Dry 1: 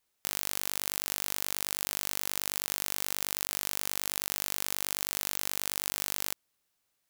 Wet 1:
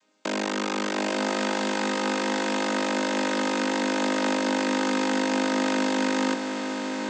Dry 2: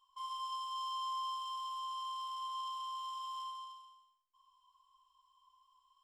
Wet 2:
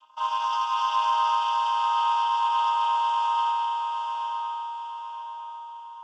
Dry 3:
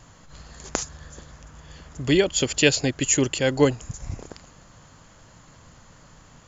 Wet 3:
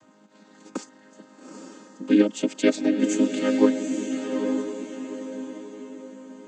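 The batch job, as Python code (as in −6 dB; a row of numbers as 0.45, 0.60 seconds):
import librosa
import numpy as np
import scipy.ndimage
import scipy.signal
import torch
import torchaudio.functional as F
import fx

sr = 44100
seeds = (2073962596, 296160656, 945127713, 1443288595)

y = fx.chord_vocoder(x, sr, chord='major triad', root=56)
y = fx.echo_diffused(y, sr, ms=853, feedback_pct=42, wet_db=-5.0)
y = y * 10.0 ** (-26 / 20.0) / np.sqrt(np.mean(np.square(y)))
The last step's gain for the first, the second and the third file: +12.5, +17.5, +0.5 decibels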